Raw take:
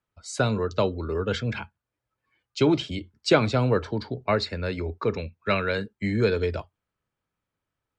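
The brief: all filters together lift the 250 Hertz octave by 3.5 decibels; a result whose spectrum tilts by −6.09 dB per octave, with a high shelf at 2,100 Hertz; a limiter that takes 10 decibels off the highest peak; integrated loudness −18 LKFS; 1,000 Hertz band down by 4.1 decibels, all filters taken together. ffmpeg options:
ffmpeg -i in.wav -af "equalizer=frequency=250:width_type=o:gain=5,equalizer=frequency=1000:width_type=o:gain=-5,highshelf=frequency=2100:gain=-3.5,volume=9.5dB,alimiter=limit=-5.5dB:level=0:latency=1" out.wav

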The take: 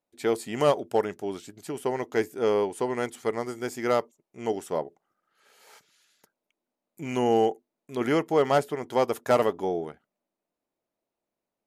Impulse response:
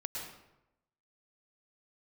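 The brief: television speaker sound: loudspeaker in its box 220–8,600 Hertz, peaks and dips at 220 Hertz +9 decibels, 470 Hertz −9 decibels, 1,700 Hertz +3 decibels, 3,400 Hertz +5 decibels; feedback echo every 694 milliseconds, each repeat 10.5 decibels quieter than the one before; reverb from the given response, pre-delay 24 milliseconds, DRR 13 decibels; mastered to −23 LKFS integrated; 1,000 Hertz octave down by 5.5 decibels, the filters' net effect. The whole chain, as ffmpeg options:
-filter_complex "[0:a]equalizer=frequency=1000:width_type=o:gain=-7.5,aecho=1:1:694|1388|2082:0.299|0.0896|0.0269,asplit=2[link_01][link_02];[1:a]atrim=start_sample=2205,adelay=24[link_03];[link_02][link_03]afir=irnorm=-1:irlink=0,volume=-14dB[link_04];[link_01][link_04]amix=inputs=2:normalize=0,highpass=frequency=220:width=0.5412,highpass=frequency=220:width=1.3066,equalizer=frequency=220:width_type=q:width=4:gain=9,equalizer=frequency=470:width_type=q:width=4:gain=-9,equalizer=frequency=1700:width_type=q:width=4:gain=3,equalizer=frequency=3400:width_type=q:width=4:gain=5,lowpass=frequency=8600:width=0.5412,lowpass=frequency=8600:width=1.3066,volume=7.5dB"

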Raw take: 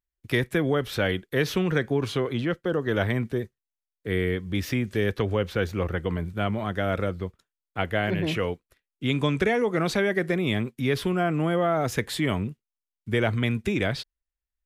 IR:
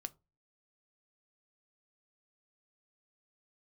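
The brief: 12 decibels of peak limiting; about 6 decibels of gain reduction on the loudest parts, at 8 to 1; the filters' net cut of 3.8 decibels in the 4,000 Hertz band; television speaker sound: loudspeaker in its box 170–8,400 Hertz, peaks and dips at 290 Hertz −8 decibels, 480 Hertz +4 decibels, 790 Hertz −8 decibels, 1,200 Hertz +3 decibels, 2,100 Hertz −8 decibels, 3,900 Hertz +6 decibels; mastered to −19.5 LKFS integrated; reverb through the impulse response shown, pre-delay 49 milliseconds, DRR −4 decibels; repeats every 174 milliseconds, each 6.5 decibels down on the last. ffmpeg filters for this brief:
-filter_complex "[0:a]equalizer=frequency=4000:width_type=o:gain=-7.5,acompressor=threshold=-25dB:ratio=8,alimiter=level_in=2dB:limit=-24dB:level=0:latency=1,volume=-2dB,aecho=1:1:174|348|522|696|870|1044:0.473|0.222|0.105|0.0491|0.0231|0.0109,asplit=2[link_01][link_02];[1:a]atrim=start_sample=2205,adelay=49[link_03];[link_02][link_03]afir=irnorm=-1:irlink=0,volume=7.5dB[link_04];[link_01][link_04]amix=inputs=2:normalize=0,highpass=frequency=170:width=0.5412,highpass=frequency=170:width=1.3066,equalizer=frequency=290:width_type=q:width=4:gain=-8,equalizer=frequency=480:width_type=q:width=4:gain=4,equalizer=frequency=790:width_type=q:width=4:gain=-8,equalizer=frequency=1200:width_type=q:width=4:gain=3,equalizer=frequency=2100:width_type=q:width=4:gain=-8,equalizer=frequency=3900:width_type=q:width=4:gain=6,lowpass=frequency=8400:width=0.5412,lowpass=frequency=8400:width=1.3066,volume=12dB"

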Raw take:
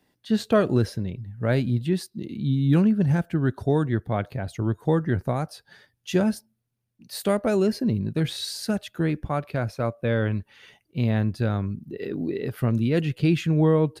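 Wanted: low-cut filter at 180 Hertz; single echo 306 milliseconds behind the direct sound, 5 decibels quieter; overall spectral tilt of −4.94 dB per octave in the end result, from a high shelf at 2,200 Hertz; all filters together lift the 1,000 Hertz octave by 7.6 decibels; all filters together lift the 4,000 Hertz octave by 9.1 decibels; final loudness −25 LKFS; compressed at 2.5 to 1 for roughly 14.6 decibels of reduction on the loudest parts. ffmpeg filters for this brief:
ffmpeg -i in.wav -af "highpass=180,equalizer=frequency=1000:width_type=o:gain=9,highshelf=frequency=2200:gain=4,equalizer=frequency=4000:width_type=o:gain=6.5,acompressor=threshold=-33dB:ratio=2.5,aecho=1:1:306:0.562,volume=8dB" out.wav

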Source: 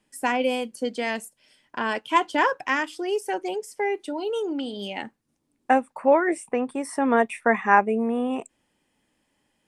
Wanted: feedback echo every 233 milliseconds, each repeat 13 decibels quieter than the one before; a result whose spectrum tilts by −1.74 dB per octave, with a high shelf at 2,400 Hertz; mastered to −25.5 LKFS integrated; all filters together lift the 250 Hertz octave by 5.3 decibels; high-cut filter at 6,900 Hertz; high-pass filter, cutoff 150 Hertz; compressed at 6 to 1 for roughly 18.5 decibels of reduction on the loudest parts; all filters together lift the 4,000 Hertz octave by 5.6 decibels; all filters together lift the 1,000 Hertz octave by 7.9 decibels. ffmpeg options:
ffmpeg -i in.wav -af "highpass=150,lowpass=6900,equalizer=frequency=250:width_type=o:gain=6,equalizer=frequency=1000:width_type=o:gain=8.5,highshelf=frequency=2400:gain=3.5,equalizer=frequency=4000:width_type=o:gain=4.5,acompressor=threshold=-25dB:ratio=6,aecho=1:1:233|466|699:0.224|0.0493|0.0108,volume=4dB" out.wav

